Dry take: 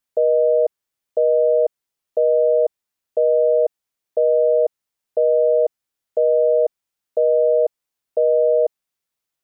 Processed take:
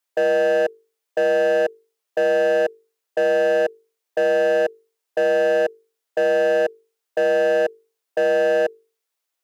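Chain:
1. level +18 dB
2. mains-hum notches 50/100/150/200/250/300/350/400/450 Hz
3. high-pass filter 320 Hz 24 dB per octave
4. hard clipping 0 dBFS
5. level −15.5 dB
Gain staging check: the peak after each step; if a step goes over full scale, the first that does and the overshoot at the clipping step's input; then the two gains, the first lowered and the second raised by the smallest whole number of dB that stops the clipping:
+8.5, +8.5, +8.5, 0.0, −15.5 dBFS
step 1, 8.5 dB
step 1 +9 dB, step 5 −6.5 dB

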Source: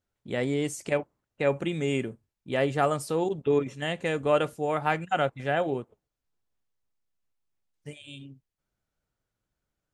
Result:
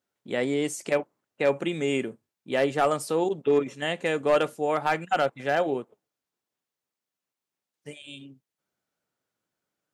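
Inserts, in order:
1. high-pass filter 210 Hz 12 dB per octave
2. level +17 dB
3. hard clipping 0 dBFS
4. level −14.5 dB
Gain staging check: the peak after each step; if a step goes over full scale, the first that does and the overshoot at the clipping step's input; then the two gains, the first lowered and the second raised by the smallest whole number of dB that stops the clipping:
−10.0, +7.0, 0.0, −14.5 dBFS
step 2, 7.0 dB
step 2 +10 dB, step 4 −7.5 dB

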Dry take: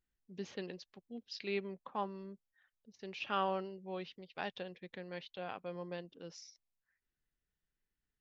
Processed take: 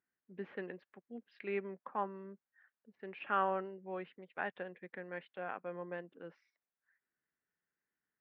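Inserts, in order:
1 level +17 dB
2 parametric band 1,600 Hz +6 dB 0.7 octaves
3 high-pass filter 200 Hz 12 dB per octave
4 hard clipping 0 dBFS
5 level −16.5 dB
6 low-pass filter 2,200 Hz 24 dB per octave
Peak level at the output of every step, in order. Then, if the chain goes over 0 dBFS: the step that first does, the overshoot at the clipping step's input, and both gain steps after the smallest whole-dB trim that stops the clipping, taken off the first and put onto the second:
−4.0, −2.0, −2.5, −2.5, −19.0, −20.5 dBFS
no step passes full scale

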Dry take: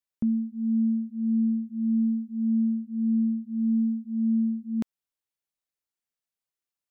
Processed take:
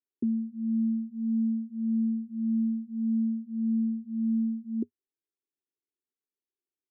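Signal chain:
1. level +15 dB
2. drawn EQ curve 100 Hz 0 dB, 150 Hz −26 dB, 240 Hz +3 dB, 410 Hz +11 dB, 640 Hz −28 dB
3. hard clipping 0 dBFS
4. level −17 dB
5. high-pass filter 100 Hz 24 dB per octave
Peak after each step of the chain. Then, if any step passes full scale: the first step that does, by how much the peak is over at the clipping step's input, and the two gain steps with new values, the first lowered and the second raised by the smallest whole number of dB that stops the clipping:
−4.5, −3.5, −3.5, −20.5, −20.5 dBFS
no step passes full scale

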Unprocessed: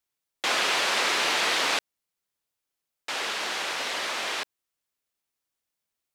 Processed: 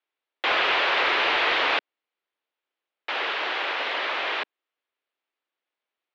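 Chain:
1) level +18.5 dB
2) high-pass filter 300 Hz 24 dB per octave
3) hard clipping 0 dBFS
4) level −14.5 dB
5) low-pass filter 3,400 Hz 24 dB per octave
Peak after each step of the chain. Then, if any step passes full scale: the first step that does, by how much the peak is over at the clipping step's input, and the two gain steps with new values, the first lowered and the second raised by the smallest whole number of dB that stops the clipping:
+6.0, +5.5, 0.0, −14.5, −13.0 dBFS
step 1, 5.5 dB
step 1 +12.5 dB, step 4 −8.5 dB

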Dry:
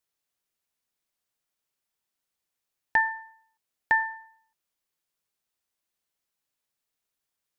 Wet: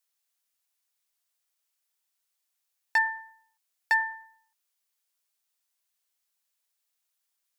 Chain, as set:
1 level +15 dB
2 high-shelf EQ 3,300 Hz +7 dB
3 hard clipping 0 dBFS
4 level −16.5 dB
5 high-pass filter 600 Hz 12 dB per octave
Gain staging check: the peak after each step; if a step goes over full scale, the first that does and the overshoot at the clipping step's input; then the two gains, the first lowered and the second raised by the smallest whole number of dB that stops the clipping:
+2.5, +4.0, 0.0, −16.5, −13.5 dBFS
step 1, 4.0 dB
step 1 +11 dB, step 4 −12.5 dB

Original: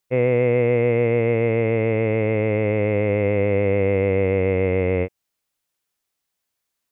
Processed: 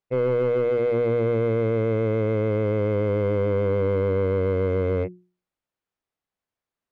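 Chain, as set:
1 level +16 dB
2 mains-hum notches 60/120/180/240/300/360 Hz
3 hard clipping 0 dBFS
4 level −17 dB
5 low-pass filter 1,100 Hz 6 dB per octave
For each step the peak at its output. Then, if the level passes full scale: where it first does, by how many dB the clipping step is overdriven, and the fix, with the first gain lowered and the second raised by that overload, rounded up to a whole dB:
+8.0, +8.0, 0.0, −17.0, −17.0 dBFS
step 1, 8.0 dB
step 1 +8 dB, step 4 −9 dB

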